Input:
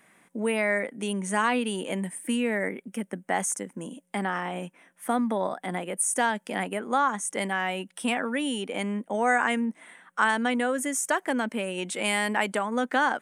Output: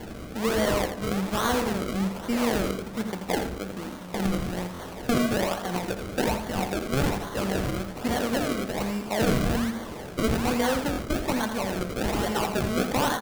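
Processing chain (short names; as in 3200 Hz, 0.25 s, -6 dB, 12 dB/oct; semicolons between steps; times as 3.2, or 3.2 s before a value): delta modulation 32 kbps, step -36.5 dBFS; high shelf 2500 Hz +10 dB; decimation with a swept rate 34×, swing 100% 1.2 Hz; echo 83 ms -8.5 dB; on a send at -10 dB: reverb RT60 0.95 s, pre-delay 7 ms; on the sum: stuck buffer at 4.73/10.91, samples 1024, times 2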